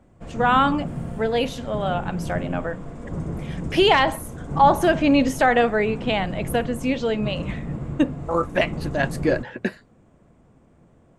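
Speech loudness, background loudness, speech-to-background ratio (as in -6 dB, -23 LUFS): -22.0 LUFS, -32.5 LUFS, 10.5 dB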